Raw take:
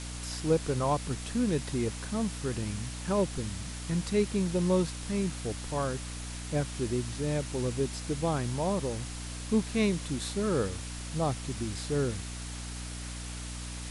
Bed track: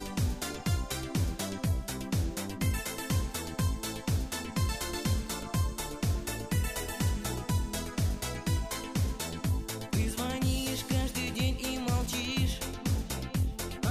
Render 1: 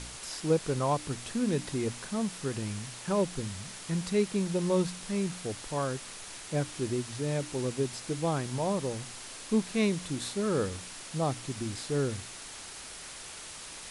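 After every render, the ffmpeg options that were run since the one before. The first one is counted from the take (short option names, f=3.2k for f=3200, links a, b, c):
-af "bandreject=f=60:t=h:w=4,bandreject=f=120:t=h:w=4,bandreject=f=180:t=h:w=4,bandreject=f=240:t=h:w=4,bandreject=f=300:t=h:w=4"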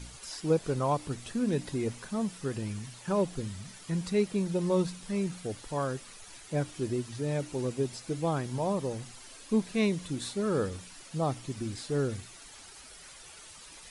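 -af "afftdn=nr=10:nf=-45"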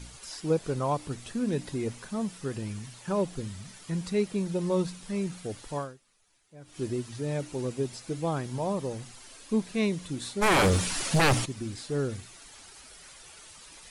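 -filter_complex "[0:a]asplit=3[a][b][c];[a]afade=t=out:st=10.41:d=0.02[d];[b]aeval=exprs='0.126*sin(PI/2*5.01*val(0)/0.126)':c=same,afade=t=in:st=10.41:d=0.02,afade=t=out:st=11.44:d=0.02[e];[c]afade=t=in:st=11.44:d=0.02[f];[d][e][f]amix=inputs=3:normalize=0,asplit=3[g][h][i];[g]atrim=end=6,asetpts=PTS-STARTPTS,afade=t=out:st=5.77:d=0.23:c=qua:silence=0.1[j];[h]atrim=start=6:end=6.57,asetpts=PTS-STARTPTS,volume=-20dB[k];[i]atrim=start=6.57,asetpts=PTS-STARTPTS,afade=t=in:d=0.23:c=qua:silence=0.1[l];[j][k][l]concat=n=3:v=0:a=1"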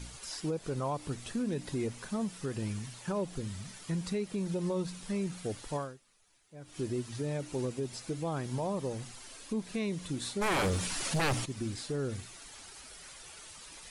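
-af "alimiter=level_in=1.5dB:limit=-24dB:level=0:latency=1:release=166,volume=-1.5dB"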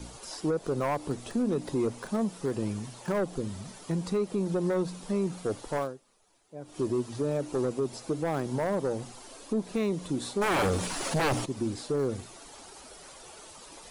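-filter_complex "[0:a]acrossover=split=240|1200|2000[a][b][c][d];[b]aeval=exprs='0.0631*sin(PI/2*2*val(0)/0.0631)':c=same[e];[c]acrusher=bits=7:mix=0:aa=0.000001[f];[a][e][f][d]amix=inputs=4:normalize=0"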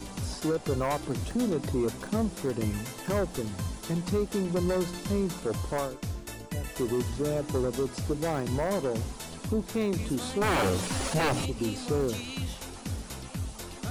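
-filter_complex "[1:a]volume=-5dB[a];[0:a][a]amix=inputs=2:normalize=0"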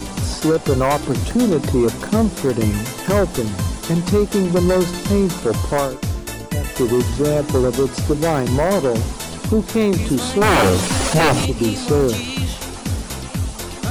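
-af "volume=12dB"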